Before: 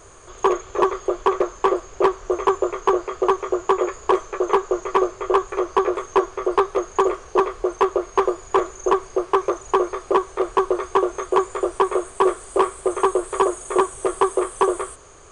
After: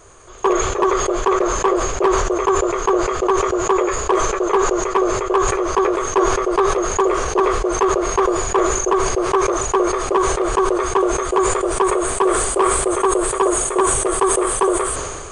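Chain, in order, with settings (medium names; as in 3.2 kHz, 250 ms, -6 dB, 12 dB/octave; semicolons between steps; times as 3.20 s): decay stretcher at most 30 dB/s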